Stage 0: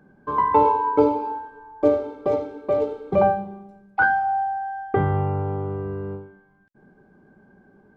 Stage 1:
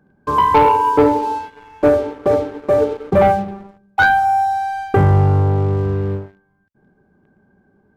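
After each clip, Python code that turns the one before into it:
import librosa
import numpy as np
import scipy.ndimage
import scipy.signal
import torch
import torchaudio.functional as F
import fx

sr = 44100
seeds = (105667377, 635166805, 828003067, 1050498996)

y = fx.peak_eq(x, sr, hz=82.0, db=7.0, octaves=1.3)
y = fx.leveller(y, sr, passes=2)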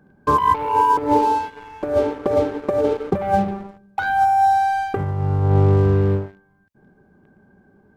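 y = fx.over_compress(x, sr, threshold_db=-16.0, ratio=-0.5)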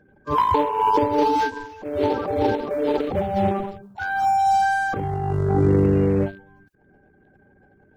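y = fx.spec_quant(x, sr, step_db=30)
y = fx.transient(y, sr, attack_db=-11, sustain_db=11)
y = F.gain(torch.from_numpy(y), -2.0).numpy()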